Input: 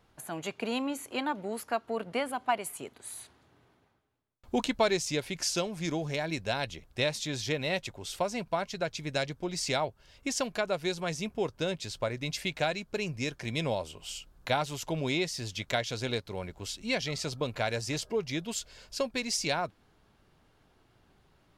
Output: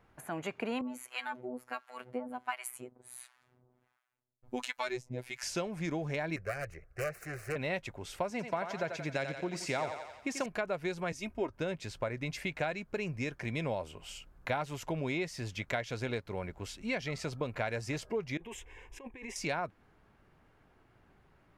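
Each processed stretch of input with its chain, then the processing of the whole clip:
0.81–5.43 s: treble shelf 2.9 kHz +9 dB + harmonic tremolo 1.4 Hz, depth 100%, crossover 790 Hz + robot voice 125 Hz
6.36–7.56 s: self-modulated delay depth 0.39 ms + treble shelf 8.5 kHz -11 dB + static phaser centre 920 Hz, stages 6
8.30–10.46 s: high-pass 92 Hz + thinning echo 88 ms, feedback 56%, high-pass 360 Hz, level -7.5 dB
11.12–11.53 s: comb 3.2 ms, depth 72% + three bands expanded up and down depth 70%
18.37–19.36 s: treble shelf 8.1 kHz -11.5 dB + static phaser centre 920 Hz, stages 8 + compressor with a negative ratio -44 dBFS
whole clip: resonant high shelf 2.8 kHz -7 dB, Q 1.5; compression 2:1, threshold -33 dBFS

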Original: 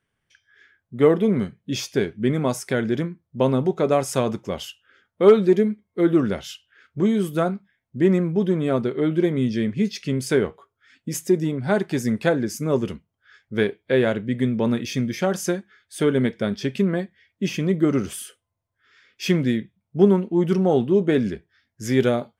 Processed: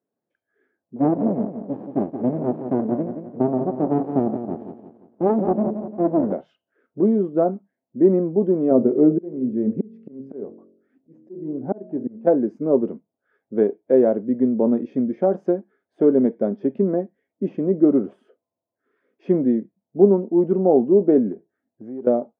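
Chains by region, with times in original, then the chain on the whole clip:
0.96–6.32 s: feedback delay 174 ms, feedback 42%, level -8.5 dB + sliding maximum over 65 samples
8.71–12.27 s: tilt EQ -2.5 dB/octave + de-hum 45.23 Hz, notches 14 + slow attack 707 ms
21.32–22.07 s: low-pass 1.8 kHz 6 dB/octave + hard clipper -9.5 dBFS + compression, threshold -32 dBFS
whole clip: Chebyshev band-pass 250–690 Hz, order 2; level rider gain up to 4 dB; trim +1 dB

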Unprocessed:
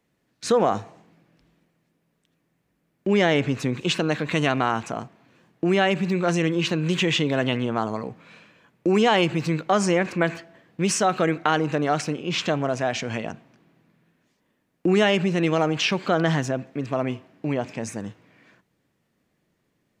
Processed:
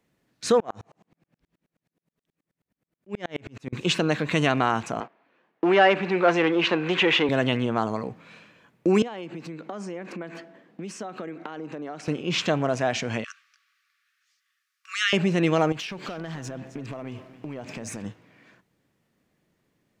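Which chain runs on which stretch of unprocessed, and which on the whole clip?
0.60–3.73 s: compression 3:1, threshold -22 dBFS + sawtooth tremolo in dB swelling 9.4 Hz, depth 39 dB
5.00–7.29 s: waveshaping leveller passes 2 + band-pass 410–2600 Hz
9.02–12.08 s: compression 8:1, threshold -33 dBFS + high-pass 200 Hz 24 dB/octave + tilt EQ -2 dB/octave
13.24–15.13 s: brick-wall FIR high-pass 1.1 kHz + peaking EQ 5.2 kHz +6.5 dB 0.87 oct
15.72–18.05 s: compression 20:1, threshold -33 dBFS + waveshaping leveller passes 1 + delay 264 ms -14 dB
whole clip: none

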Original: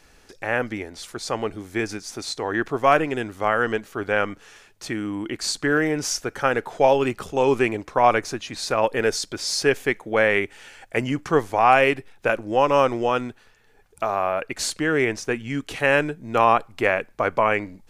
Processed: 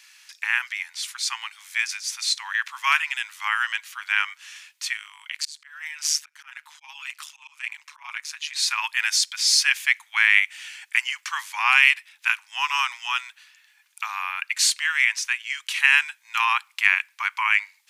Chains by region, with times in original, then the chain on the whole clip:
4.97–8.56 s: AM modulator 150 Hz, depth 70% + slow attack 464 ms
whole clip: steep high-pass 920 Hz 72 dB/octave; resonant high shelf 1.7 kHz +8 dB, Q 1.5; trim -1.5 dB

